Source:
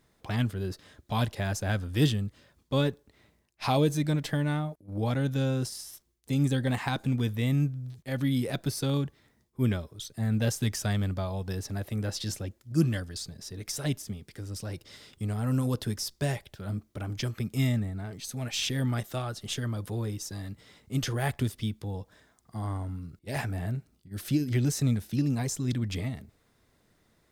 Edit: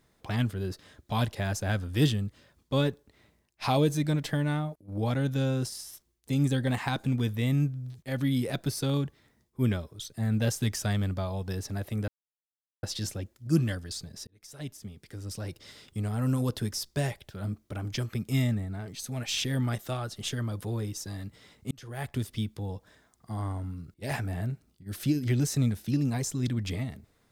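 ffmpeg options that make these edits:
ffmpeg -i in.wav -filter_complex "[0:a]asplit=4[link_01][link_02][link_03][link_04];[link_01]atrim=end=12.08,asetpts=PTS-STARTPTS,afade=type=out:start_time=12.076:duration=0.004:curve=hsin,apad=pad_dur=0.75[link_05];[link_02]atrim=start=12.08:end=13.52,asetpts=PTS-STARTPTS,afade=type=in:duration=0.004:curve=hsin,afade=type=out:start_time=1.436:duration=0.004:curve=hsin[link_06];[link_03]atrim=start=13.52:end=20.96,asetpts=PTS-STARTPTS,afade=type=in:duration=1.07,afade=type=out:start_time=7.436:duration=0.004:curve=hsin[link_07];[link_04]atrim=start=20.96,asetpts=PTS-STARTPTS,afade=type=in:duration=0.64[link_08];[link_05][link_06][link_07][link_08]concat=n=4:v=0:a=1" out.wav

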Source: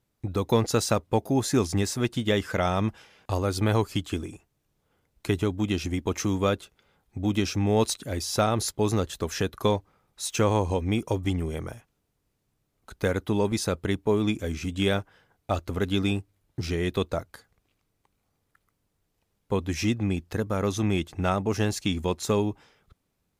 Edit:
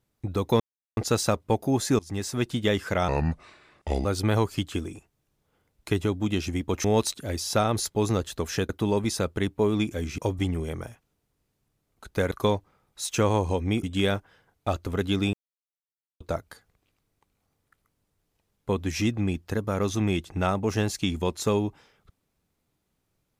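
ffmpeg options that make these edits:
ffmpeg -i in.wav -filter_complex "[0:a]asplit=12[link_01][link_02][link_03][link_04][link_05][link_06][link_07][link_08][link_09][link_10][link_11][link_12];[link_01]atrim=end=0.6,asetpts=PTS-STARTPTS,afade=type=out:start_time=0.596:duration=0.004:curve=hsin,apad=pad_dur=0.37[link_13];[link_02]atrim=start=0.6:end=1.62,asetpts=PTS-STARTPTS,afade=type=in:duration=0.004:curve=hsin,afade=type=out:start_time=1.016:duration=0.004:curve=hsin:silence=0.0668344[link_14];[link_03]atrim=start=1.62:end=2.714,asetpts=PTS-STARTPTS,afade=type=in:duration=0.56:curve=qsin:silence=0.0668344[link_15];[link_04]atrim=start=2.71:end=3.43,asetpts=PTS-STARTPTS,asetrate=32634,aresample=44100,atrim=end_sample=42908,asetpts=PTS-STARTPTS[link_16];[link_05]atrim=start=3.426:end=6.222[link_17];[link_06]atrim=start=7.668:end=9.522[link_18];[link_07]atrim=start=13.168:end=14.662[link_19];[link_08]atrim=start=11.038:end=13.172[link_20];[link_09]atrim=start=9.518:end=11.042[link_21];[link_10]atrim=start=14.658:end=16.16,asetpts=PTS-STARTPTS,afade=type=out:start_time=1.498:duration=0.004:curve=hsin[link_22];[link_11]atrim=start=16.16:end=17.03,asetpts=PTS-STARTPTS,volume=0[link_23];[link_12]atrim=start=17.03,asetpts=PTS-STARTPTS,afade=type=in:duration=0.004:curve=hsin[link_24];[link_13][link_14][link_15]concat=n=3:v=0:a=1[link_25];[link_25][link_16]acrossfade=duration=0.004:curve1=hsin:curve2=hsin[link_26];[link_26][link_17]acrossfade=duration=0.004:curve1=hsin:curve2=hsin[link_27];[link_27][link_18]acrossfade=duration=0.004:curve1=hsin:curve2=hsin[link_28];[link_28][link_19]acrossfade=duration=0.004:curve1=hsin:curve2=hsin[link_29];[link_29][link_20]acrossfade=duration=0.004:curve1=hsin:curve2=hsin[link_30];[link_30][link_21]acrossfade=duration=0.004:curve1=hsin:curve2=hsin[link_31];[link_22][link_23][link_24]concat=n=3:v=0:a=1[link_32];[link_31][link_32]acrossfade=duration=0.004:curve1=hsin:curve2=hsin" out.wav

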